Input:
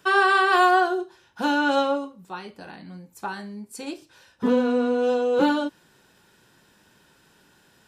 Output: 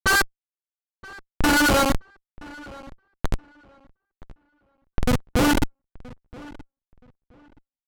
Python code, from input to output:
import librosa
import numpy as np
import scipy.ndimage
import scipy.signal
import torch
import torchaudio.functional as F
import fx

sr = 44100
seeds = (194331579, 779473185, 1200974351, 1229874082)

y = fx.band_shelf(x, sr, hz=2800.0, db=14.5, octaves=2.6)
y = np.where(np.abs(y) >= 10.0 ** (-13.5 / 20.0), y, 0.0)
y = fx.step_gate(y, sr, bpm=70, pattern='x....xxxx', floor_db=-60.0, edge_ms=4.5)
y = fx.schmitt(y, sr, flips_db=-16.5)
y = fx.env_lowpass(y, sr, base_hz=2700.0, full_db=-22.5)
y = fx.echo_filtered(y, sr, ms=974, feedback_pct=23, hz=2800.0, wet_db=-21)
y = F.gain(torch.from_numpy(y), 5.0).numpy()